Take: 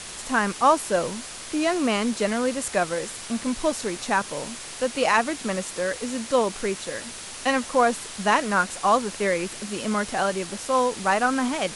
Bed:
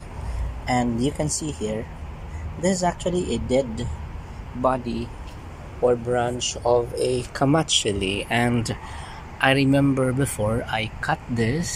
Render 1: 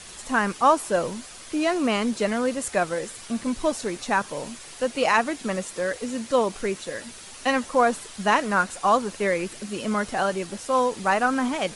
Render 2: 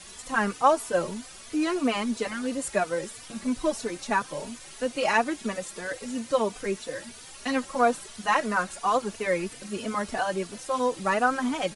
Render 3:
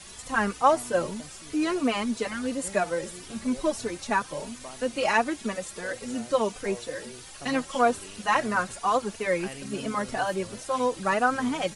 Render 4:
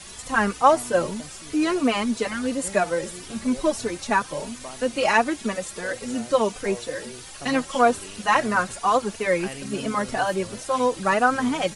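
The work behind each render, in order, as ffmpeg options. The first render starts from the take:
ffmpeg -i in.wav -af "afftdn=noise_reduction=7:noise_floor=-38" out.wav
ffmpeg -i in.wav -filter_complex "[0:a]asplit=2[link_01][link_02];[link_02]adelay=3.3,afreqshift=3[link_03];[link_01][link_03]amix=inputs=2:normalize=1" out.wav
ffmpeg -i in.wav -i bed.wav -filter_complex "[1:a]volume=-23dB[link_01];[0:a][link_01]amix=inputs=2:normalize=0" out.wav
ffmpeg -i in.wav -af "volume=4dB" out.wav

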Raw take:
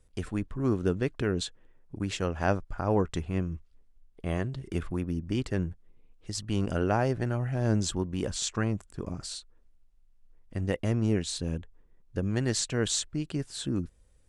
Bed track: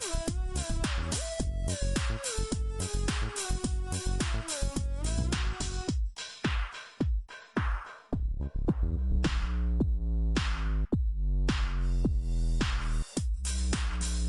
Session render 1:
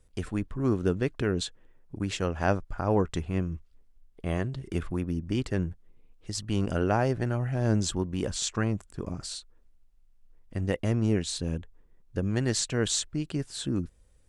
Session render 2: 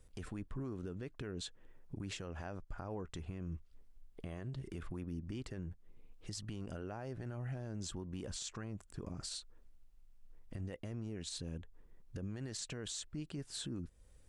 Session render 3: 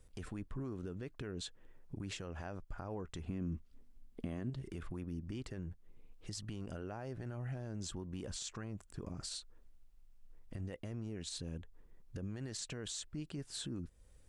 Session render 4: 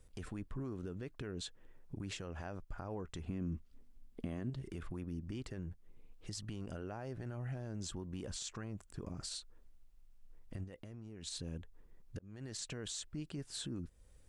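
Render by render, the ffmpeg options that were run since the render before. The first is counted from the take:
ffmpeg -i in.wav -af "volume=1dB" out.wav
ffmpeg -i in.wav -af "acompressor=threshold=-42dB:ratio=2,alimiter=level_in=9.5dB:limit=-24dB:level=0:latency=1:release=54,volume=-9.5dB" out.wav
ffmpeg -i in.wav -filter_complex "[0:a]asettb=1/sr,asplit=3[link_01][link_02][link_03];[link_01]atrim=end=3.244[link_04];[link_02]atrim=start=3.24:end=4.5,asetpts=PTS-STARTPTS,afade=type=in:duration=0.004:curve=qsin,afade=type=out:start_time=1.256:duration=0.004:curve=qsin,equalizer=frequency=240:width=2:gain=11.5[link_05];[link_03]atrim=start=4.496[link_06];[link_04][link_05]acrossfade=duration=0.004:curve1=hsin:curve2=qsin[link_07];[link_07][link_06]acrossfade=duration=0.004:curve1=qsin:curve2=hsin" out.wav
ffmpeg -i in.wav -filter_complex "[0:a]asplit=3[link_01][link_02][link_03];[link_01]afade=type=out:start_time=10.63:duration=0.02[link_04];[link_02]acompressor=threshold=-45dB:ratio=6:attack=3.2:release=140:knee=1:detection=peak,afade=type=in:start_time=10.63:duration=0.02,afade=type=out:start_time=11.22:duration=0.02[link_05];[link_03]afade=type=in:start_time=11.22:duration=0.02[link_06];[link_04][link_05][link_06]amix=inputs=3:normalize=0,asplit=2[link_07][link_08];[link_07]atrim=end=12.19,asetpts=PTS-STARTPTS,afade=type=out:start_time=12.186:duration=0.004:curve=hsin[link_09];[link_08]atrim=start=12.19,asetpts=PTS-STARTPTS,afade=type=in:duration=0.51:curve=qsin[link_10];[link_09][link_10]concat=n=2:v=0:a=1" out.wav

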